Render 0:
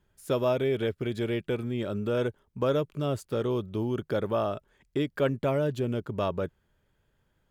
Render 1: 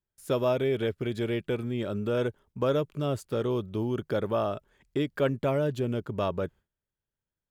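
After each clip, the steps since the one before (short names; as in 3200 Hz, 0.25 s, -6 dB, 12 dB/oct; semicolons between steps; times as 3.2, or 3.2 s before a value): gate with hold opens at -58 dBFS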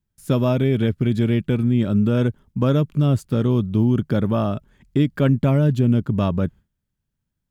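resonant low shelf 310 Hz +9 dB, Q 1.5; gain +4.5 dB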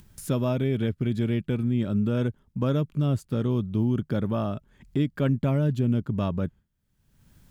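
upward compressor, threshold -24 dBFS; gain -6.5 dB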